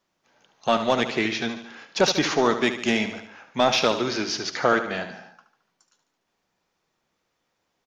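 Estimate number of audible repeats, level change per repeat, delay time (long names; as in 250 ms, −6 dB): 4, −5.0 dB, 73 ms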